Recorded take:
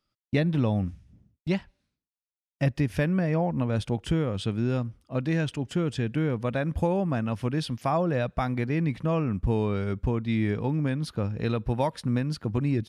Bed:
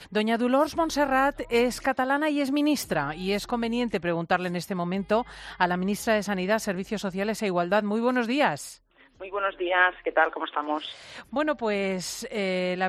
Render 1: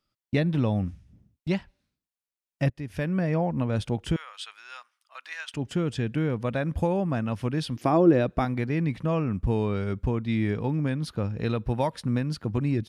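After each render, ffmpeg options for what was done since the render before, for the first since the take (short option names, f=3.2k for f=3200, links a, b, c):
-filter_complex "[0:a]asettb=1/sr,asplit=3[a][b][c];[a]atrim=end=4.164[d];[b]atrim=start=4.16:end=5.54,asetpts=PTS-STARTPTS,afade=t=in:d=0.004:c=qsin,afade=t=out:st=1.376:d=0.004:c=qsin,highpass=f=1.1k:w=0.5412,highpass=f=1.1k:w=1.3066[e];[c]atrim=start=5.536[f];[d][e]acrossfade=d=0.004:c1=hsin:c2=qsin[g];[g][f]acrossfade=d=0.004:c1=qsin:c2=hsin,asettb=1/sr,asplit=3[h][i][j];[h]atrim=end=7.764[k];[i]atrim=start=7.76:end=8.45,asetpts=PTS-STARTPTS,afade=t=in:d=0.004:c=qsin,afade=t=out:st=0.686:d=0.004:c=qsin,equalizer=f=330:t=o:w=0.77:g=14[l];[j]atrim=start=8.446[m];[k][l]acrossfade=d=0.004:c1=hsin:c2=qsin[n];[n][m]acrossfade=d=0.004:c1=qsin:c2=hsin,asplit=2[o][p];[o]atrim=end=2.7,asetpts=PTS-STARTPTS,afade=t=out:st=2.696:d=0.004:c=hsin:silence=0.105925[q];[p]atrim=start=2.7,asetpts=PTS-STARTPTS,afade=t=in:d=0.53:silence=0.105925[r];[q][r]concat=n=2:v=0:a=1"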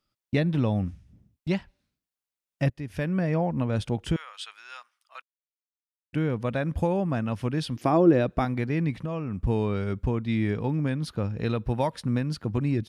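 -filter_complex "[0:a]asettb=1/sr,asplit=3[a][b][c];[a]atrim=end=8.904[d];[b]atrim=start=8.9:end=9.44,asetpts=PTS-STARTPTS,afade=t=in:d=0.004:c=qsin,afade=t=out:st=0.536:d=0.004:c=qsin,acompressor=threshold=-27dB:ratio=4:attack=3.2:release=140:knee=1:detection=peak[e];[c]atrim=start=9.436[f];[d][e]acrossfade=d=0.004:c1=hsin:c2=qsin[g];[g][f]acrossfade=d=0.004:c1=qsin:c2=hsin,asplit=3[h][i][j];[h]atrim=end=5.22,asetpts=PTS-STARTPTS,afade=t=out:st=5.216:d=0.004:c=hsin[k];[i]atrim=start=5.22:end=6.13,asetpts=PTS-STARTPTS,volume=0[l];[j]atrim=start=6.13,asetpts=PTS-STARTPTS,afade=t=in:d=0.004:c=hsin[m];[k][l][m]concat=n=3:v=0:a=1"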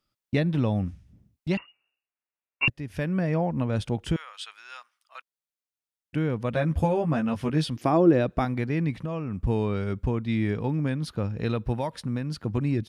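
-filter_complex "[0:a]asettb=1/sr,asplit=3[a][b][c];[a]atrim=end=1.574[d];[b]atrim=start=1.57:end=2.68,asetpts=PTS-STARTPTS,afade=t=in:d=0.004:c=qsin,afade=t=out:st=1.106:d=0.004:c=qsin,lowpass=f=2.5k:t=q:w=0.5098,lowpass=f=2.5k:t=q:w=0.6013,lowpass=f=2.5k:t=q:w=0.9,lowpass=f=2.5k:t=q:w=2.563,afreqshift=-2900[e];[c]atrim=start=2.676[f];[d][e]acrossfade=d=0.004:c1=hsin:c2=qsin[g];[g][f]acrossfade=d=0.004:c1=qsin:c2=hsin,asettb=1/sr,asplit=3[h][i][j];[h]atrim=end=6.524[k];[i]atrim=start=6.52:end=7.7,asetpts=PTS-STARTPTS,afade=t=in:d=0.004:c=qsin,afade=t=out:st=1.176:d=0.004:c=qsin,asplit=2[l][m];[m]adelay=13,volume=-2.5dB[n];[l][n]amix=inputs=2:normalize=0,atrim=end_sample=52038[o];[j]atrim=start=7.696[p];[k][o]acrossfade=d=0.004:c1=hsin:c2=qsin[q];[q][p]acrossfade=d=0.004:c1=qsin:c2=hsin,asettb=1/sr,asplit=3[r][s][t];[r]atrim=end=11.764[u];[s]atrim=start=11.76:end=12.45,asetpts=PTS-STARTPTS,afade=t=in:d=0.004:c=qsin,afade=t=out:st=0.686:d=0.004:c=qsin,acompressor=threshold=-30dB:ratio=1.5:attack=3.2:release=140:knee=1:detection=peak[v];[t]atrim=start=12.446[w];[u][v]acrossfade=d=0.004:c1=hsin:c2=qsin[x];[x][w]acrossfade=d=0.004:c1=qsin:c2=hsin"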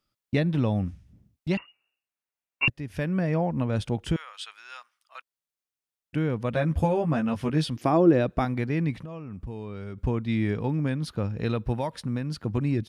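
-filter_complex "[0:a]asettb=1/sr,asplit=3[a][b][c];[a]atrim=end=8.994[d];[b]atrim=start=8.99:end=9.98,asetpts=PTS-STARTPTS,afade=t=in:d=0.004:c=qsin,afade=t=out:st=0.986:d=0.004:c=qsin,acompressor=threshold=-36dB:ratio=3:attack=3.2:release=140:knee=1:detection=peak[e];[c]atrim=start=9.976[f];[d][e]acrossfade=d=0.004:c1=hsin:c2=qsin[g];[g][f]acrossfade=d=0.004:c1=qsin:c2=hsin"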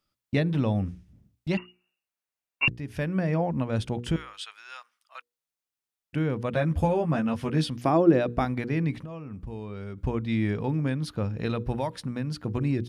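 -af "bandreject=f=60:t=h:w=6,bandreject=f=120:t=h:w=6,bandreject=f=180:t=h:w=6,bandreject=f=240:t=h:w=6,bandreject=f=300:t=h:w=6,bandreject=f=360:t=h:w=6,bandreject=f=420:t=h:w=6,bandreject=f=480:t=h:w=6"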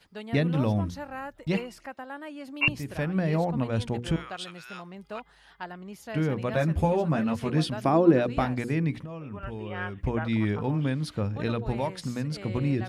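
-filter_complex "[1:a]volume=-15dB[a];[0:a][a]amix=inputs=2:normalize=0"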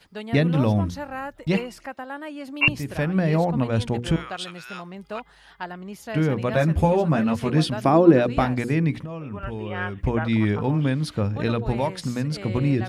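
-af "volume=5dB"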